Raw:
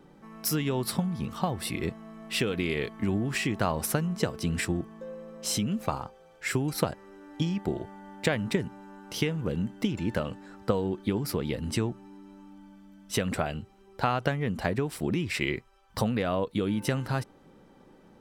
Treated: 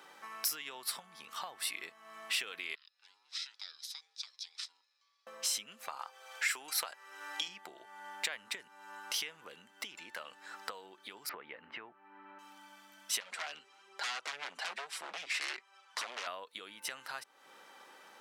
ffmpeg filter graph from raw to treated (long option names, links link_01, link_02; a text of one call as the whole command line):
ffmpeg -i in.wav -filter_complex "[0:a]asettb=1/sr,asplit=3[link_01][link_02][link_03];[link_01]atrim=end=2.754[link_04];[link_02]atrim=start=2.75:end=5.27,asetpts=PTS-STARTPTS,afade=type=in:duration=0.004:curve=qsin,afade=type=out:start_time=2.516:duration=0.004:curve=qsin,bandpass=frequency=4500:width_type=q:width=13,aeval=exprs='val(0)*sin(2*PI*600*n/s)':channel_layout=same,afreqshift=24[link_05];[link_03]atrim=start=5.266[link_06];[link_04][link_05]acrossfade=duration=0.004:curve1=hsin:curve2=qsin[link_07];[link_07][link_06]acrossfade=duration=0.004:curve1=qsin:curve2=hsin,asettb=1/sr,asplit=3[link_08][link_09][link_10];[link_08]atrim=end=5.994[link_11];[link_09]atrim=start=5.99:end=7.48,asetpts=PTS-STARTPTS,afade=type=in:duration=0.004:curve=qsin,afade=type=out:start_time=1.486:duration=0.004:curve=qsin,highpass=frequency=650:poles=1,acontrast=70[link_12];[link_10]atrim=start=7.476[link_13];[link_11][link_12]acrossfade=duration=0.004:curve1=hsin:curve2=qsin[link_14];[link_14][link_13]acrossfade=duration=0.004:curve1=qsin:curve2=hsin,asettb=1/sr,asplit=3[link_15][link_16][link_17];[link_15]atrim=end=11.294[link_18];[link_16]atrim=start=11.29:end=12.39,asetpts=PTS-STARTPTS,afade=type=in:duration=0.004:curve=qsin,afade=type=out:start_time=1.096:duration=0.004:curve=qsin,lowpass=frequency=2200:width=0.5412,lowpass=frequency=2200:width=1.3066,acontrast=39[link_19];[link_17]atrim=start=12.386[link_20];[link_18][link_19]acrossfade=duration=0.004:curve1=hsin:curve2=qsin[link_21];[link_21][link_20]acrossfade=duration=0.004:curve1=qsin:curve2=hsin,asettb=1/sr,asplit=3[link_22][link_23][link_24];[link_22]atrim=end=13.204[link_25];[link_23]atrim=start=13.2:end=16.27,asetpts=PTS-STARTPTS,afade=type=in:duration=0.004:curve=qsin,afade=type=out:start_time=3.066:duration=0.004:curve=qsin,flanger=delay=5:depth=2.3:regen=-1:speed=1.2:shape=sinusoidal,aeval=exprs='0.0299*(abs(mod(val(0)/0.0299+3,4)-2)-1)':channel_layout=same,highpass=220,lowpass=7500[link_26];[link_24]atrim=start=16.266[link_27];[link_25][link_26]acrossfade=duration=0.004:curve1=hsin:curve2=qsin[link_28];[link_28][link_27]acrossfade=duration=0.004:curve1=qsin:curve2=hsin,acompressor=threshold=-45dB:ratio=4,highpass=1200,volume=11dB" out.wav